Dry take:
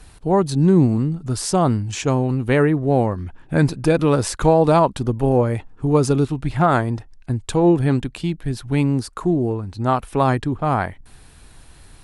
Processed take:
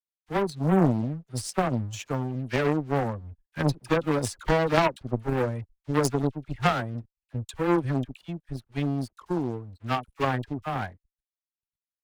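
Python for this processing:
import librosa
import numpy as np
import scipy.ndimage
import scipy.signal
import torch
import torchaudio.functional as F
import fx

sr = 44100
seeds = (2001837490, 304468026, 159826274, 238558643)

y = fx.bin_expand(x, sr, power=1.5)
y = fx.high_shelf(y, sr, hz=8300.0, db=-3.5)
y = fx.leveller(y, sr, passes=3)
y = fx.dispersion(y, sr, late='lows', ms=50.0, hz=1000.0)
y = np.sign(y) * np.maximum(np.abs(y) - 10.0 ** (-55.0 / 20.0), 0.0)
y = fx.cheby_harmonics(y, sr, harmonics=(3,), levels_db=(-11,), full_scale_db=1.0)
y = y * 10.0 ** (-4.0 / 20.0)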